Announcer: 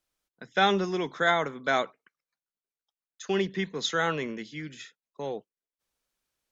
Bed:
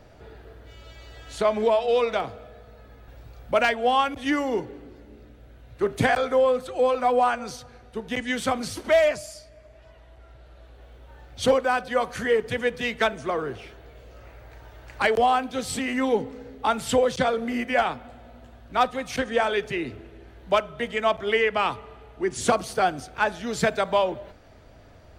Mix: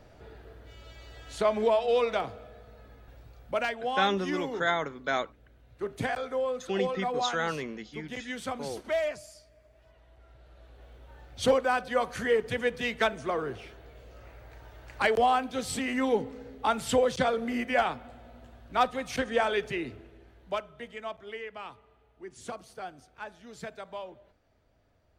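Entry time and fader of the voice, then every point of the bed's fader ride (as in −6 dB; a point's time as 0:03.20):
3.40 s, −3.5 dB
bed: 0:02.87 −3.5 dB
0:03.82 −10 dB
0:09.72 −10 dB
0:10.85 −3.5 dB
0:19.67 −3.5 dB
0:21.39 −18 dB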